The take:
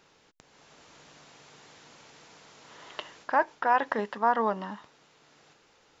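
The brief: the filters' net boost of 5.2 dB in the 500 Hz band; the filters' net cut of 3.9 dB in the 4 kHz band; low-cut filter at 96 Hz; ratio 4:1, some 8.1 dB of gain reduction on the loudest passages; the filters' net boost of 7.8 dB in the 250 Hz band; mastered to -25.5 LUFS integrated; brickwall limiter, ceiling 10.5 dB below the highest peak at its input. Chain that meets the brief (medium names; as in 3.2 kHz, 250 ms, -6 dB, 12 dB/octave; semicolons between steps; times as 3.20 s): high-pass 96 Hz; peaking EQ 250 Hz +8.5 dB; peaking EQ 500 Hz +4.5 dB; peaking EQ 4 kHz -6 dB; compression 4:1, threshold -25 dBFS; trim +11 dB; peak limiter -12 dBFS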